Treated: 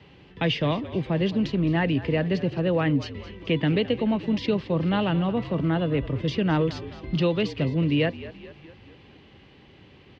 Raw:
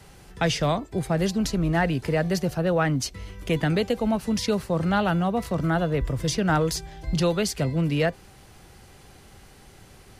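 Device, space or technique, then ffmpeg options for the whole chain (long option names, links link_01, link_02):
frequency-shifting delay pedal into a guitar cabinet: -filter_complex "[0:a]asplit=6[link_01][link_02][link_03][link_04][link_05][link_06];[link_02]adelay=215,afreqshift=-48,volume=-15.5dB[link_07];[link_03]adelay=430,afreqshift=-96,volume=-20.5dB[link_08];[link_04]adelay=645,afreqshift=-144,volume=-25.6dB[link_09];[link_05]adelay=860,afreqshift=-192,volume=-30.6dB[link_10];[link_06]adelay=1075,afreqshift=-240,volume=-35.6dB[link_11];[link_01][link_07][link_08][link_09][link_10][link_11]amix=inputs=6:normalize=0,highpass=85,equalizer=frequency=290:width_type=q:width=4:gain=5,equalizer=frequency=730:width_type=q:width=4:gain=-7,equalizer=frequency=1400:width_type=q:width=4:gain=-9,equalizer=frequency=2900:width_type=q:width=4:gain=5,lowpass=frequency=3600:width=0.5412,lowpass=frequency=3600:width=1.3066"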